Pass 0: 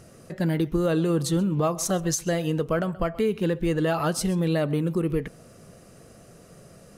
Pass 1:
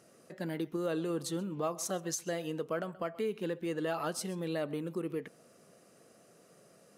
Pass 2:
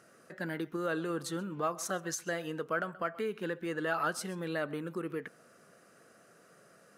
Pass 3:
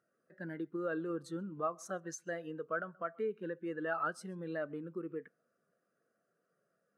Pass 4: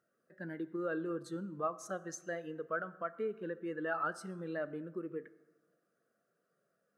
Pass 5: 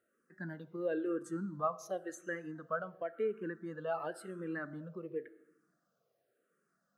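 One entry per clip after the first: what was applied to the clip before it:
high-pass filter 240 Hz 12 dB per octave; level −9 dB
parametric band 1,500 Hz +11.5 dB 0.79 octaves; level −1.5 dB
every bin expanded away from the loudest bin 1.5 to 1; level −4 dB
dense smooth reverb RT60 1.2 s, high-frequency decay 0.55×, DRR 15 dB
frequency shifter mixed with the dry sound −0.94 Hz; level +3.5 dB

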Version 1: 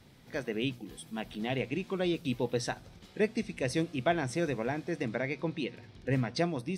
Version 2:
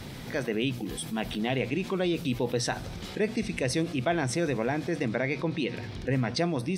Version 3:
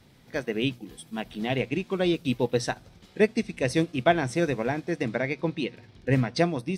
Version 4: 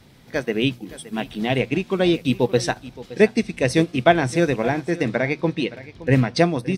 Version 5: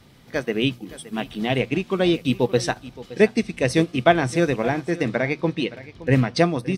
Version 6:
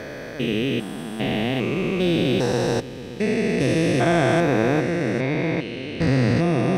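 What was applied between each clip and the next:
envelope flattener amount 50%
expander for the loud parts 2.5 to 1, over −39 dBFS; level +8 dB
single-tap delay 569 ms −17.5 dB; level +6 dB
hollow resonant body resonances 1,200/3,000 Hz, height 7 dB; level −1 dB
spectrum averaged block by block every 400 ms; level +5.5 dB

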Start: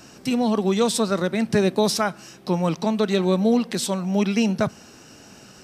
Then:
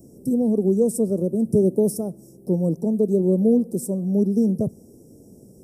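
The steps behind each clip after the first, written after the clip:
Chebyshev band-stop filter 480–9,700 Hz, order 3
parametric band 5,400 Hz +7 dB 0.33 octaves
level +2.5 dB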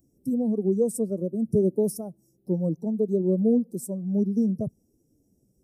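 spectral dynamics exaggerated over time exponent 1.5
level −2.5 dB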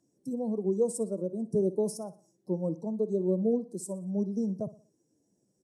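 loudspeaker in its box 210–9,500 Hz, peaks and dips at 250 Hz −6 dB, 410 Hz −3 dB, 1,000 Hz +9 dB, 1,700 Hz +9 dB, 4,300 Hz +5 dB, 6,800 Hz +3 dB
repeating echo 60 ms, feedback 41%, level −16.5 dB
level −1.5 dB

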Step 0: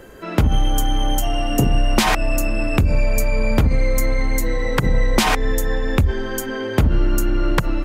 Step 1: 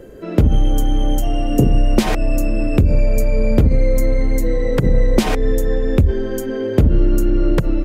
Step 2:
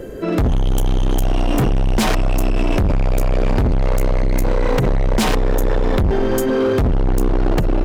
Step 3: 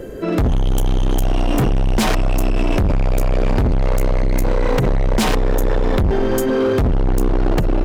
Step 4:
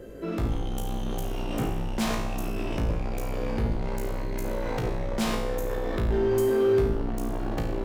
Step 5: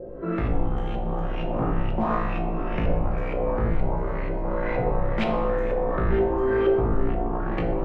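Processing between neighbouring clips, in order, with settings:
low shelf with overshoot 680 Hz +8.5 dB, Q 1.5; level −5.5 dB
gain into a clipping stage and back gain 21 dB; level +7.5 dB
no processing that can be heard
tuned comb filter 56 Hz, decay 0.79 s, harmonics all, mix 90%
auto-filter low-pass saw up 2.1 Hz 610–2,600 Hz; convolution reverb RT60 1.0 s, pre-delay 6 ms, DRR 3 dB

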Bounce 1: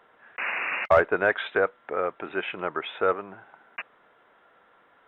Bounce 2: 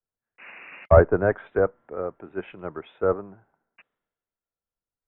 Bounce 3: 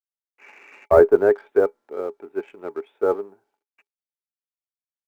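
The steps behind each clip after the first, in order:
treble cut that deepens with the level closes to 1,700 Hz, closed at −22 dBFS; spectral tilt −4.5 dB per octave; multiband upward and downward expander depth 100%; level −6 dB
mu-law and A-law mismatch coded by A; low shelf with overshoot 200 Hz −10 dB, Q 1.5; hollow resonant body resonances 410/850/2,300 Hz, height 12 dB, ringing for 100 ms; level −1 dB

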